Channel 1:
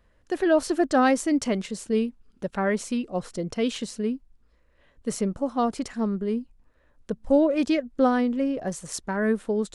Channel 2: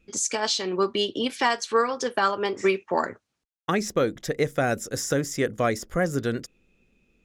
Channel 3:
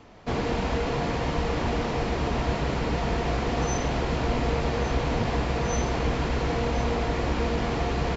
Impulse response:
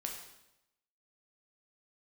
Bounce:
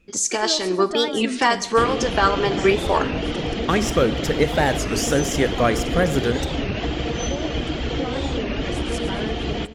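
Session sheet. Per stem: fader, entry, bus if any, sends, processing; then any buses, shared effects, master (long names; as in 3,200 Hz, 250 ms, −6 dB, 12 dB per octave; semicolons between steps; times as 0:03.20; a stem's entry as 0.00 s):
−11.0 dB, 0.00 s, bus A, no send, echo send −16 dB, automatic gain control
+2.0 dB, 0.00 s, no bus, send −8 dB, no echo send, no processing
+3.0 dB, 1.50 s, bus A, send −8.5 dB, echo send −20.5 dB, thirty-one-band graphic EQ 315 Hz +8 dB, 1,000 Hz −9 dB, 3,150 Hz +12 dB
bus A: 0.0 dB, reverb reduction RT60 1.7 s; downward compressor, threshold −25 dBFS, peak gain reduction 9.5 dB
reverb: on, RT60 0.85 s, pre-delay 5 ms
echo: repeating echo 113 ms, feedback 44%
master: wow of a warped record 33 1/3 rpm, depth 250 cents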